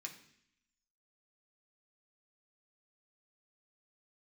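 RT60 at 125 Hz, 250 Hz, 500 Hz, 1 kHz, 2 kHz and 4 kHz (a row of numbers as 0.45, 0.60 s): 0.80, 0.95, 0.70, 0.65, 0.85, 0.85 s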